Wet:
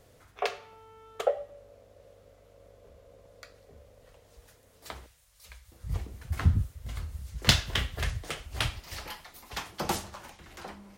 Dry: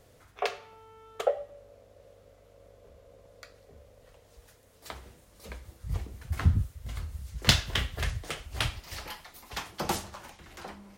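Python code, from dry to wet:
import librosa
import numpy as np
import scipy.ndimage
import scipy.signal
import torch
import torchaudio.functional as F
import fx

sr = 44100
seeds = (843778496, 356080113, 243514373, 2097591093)

y = fx.tone_stack(x, sr, knobs='10-0-10', at=(5.06, 5.72))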